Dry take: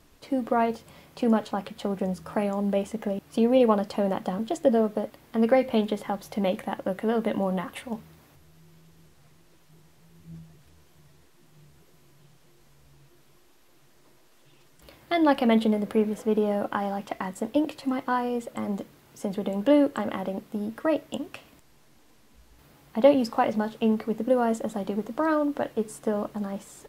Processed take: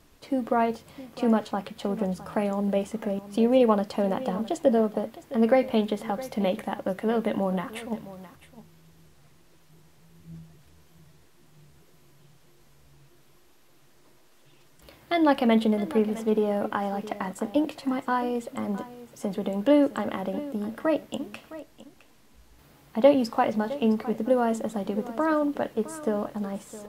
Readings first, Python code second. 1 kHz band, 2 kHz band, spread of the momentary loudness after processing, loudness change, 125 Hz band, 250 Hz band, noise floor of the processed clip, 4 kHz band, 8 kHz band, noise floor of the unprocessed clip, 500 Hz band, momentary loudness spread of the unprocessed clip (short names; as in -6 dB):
0.0 dB, 0.0 dB, 12 LU, 0.0 dB, 0.0 dB, 0.0 dB, -57 dBFS, 0.0 dB, 0.0 dB, -57 dBFS, 0.0 dB, 12 LU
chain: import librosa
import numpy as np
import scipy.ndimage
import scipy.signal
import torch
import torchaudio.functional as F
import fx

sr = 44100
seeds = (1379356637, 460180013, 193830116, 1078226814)

y = x + 10.0 ** (-16.0 / 20.0) * np.pad(x, (int(662 * sr / 1000.0), 0))[:len(x)]